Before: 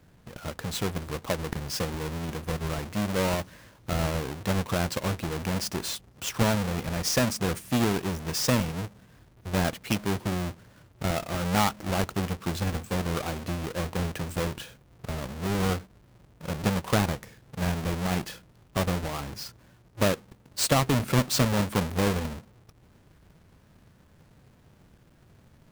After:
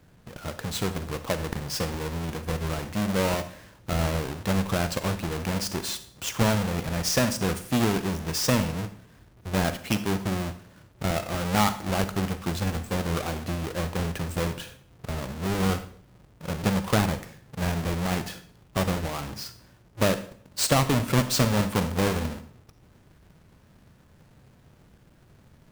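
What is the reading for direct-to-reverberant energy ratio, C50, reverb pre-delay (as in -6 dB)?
11.0 dB, 12.5 dB, 36 ms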